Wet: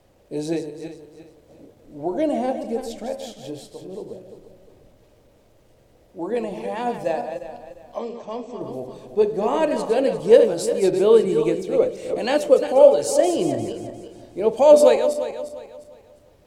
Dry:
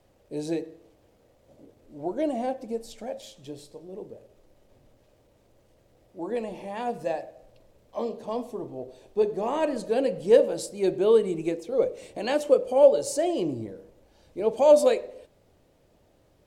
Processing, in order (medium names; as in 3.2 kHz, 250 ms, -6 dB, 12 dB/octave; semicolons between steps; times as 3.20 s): backward echo that repeats 176 ms, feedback 55%, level -8 dB; 7.98–8.61 s: rippled Chebyshev low-pass 8 kHz, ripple 6 dB; trim +5 dB